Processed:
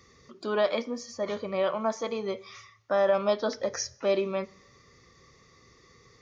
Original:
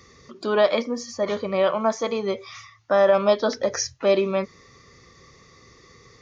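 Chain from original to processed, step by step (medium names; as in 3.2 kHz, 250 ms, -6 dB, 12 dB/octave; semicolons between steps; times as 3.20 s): plate-style reverb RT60 0.81 s, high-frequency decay 0.95×, DRR 19 dB; trim -6.5 dB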